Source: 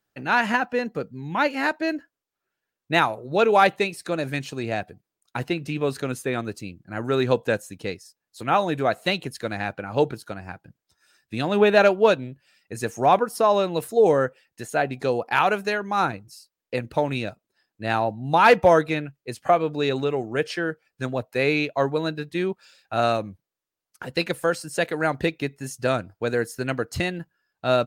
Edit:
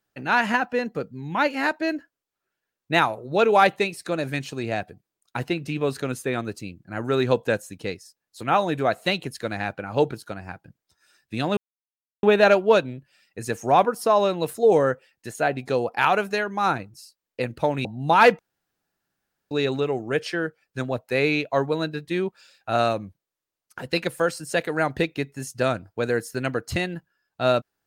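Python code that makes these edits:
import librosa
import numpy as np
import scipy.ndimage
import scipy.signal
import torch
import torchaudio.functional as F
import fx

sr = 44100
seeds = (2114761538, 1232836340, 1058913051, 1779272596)

y = fx.edit(x, sr, fx.insert_silence(at_s=11.57, length_s=0.66),
    fx.cut(start_s=17.19, length_s=0.9),
    fx.room_tone_fill(start_s=18.63, length_s=1.12), tone=tone)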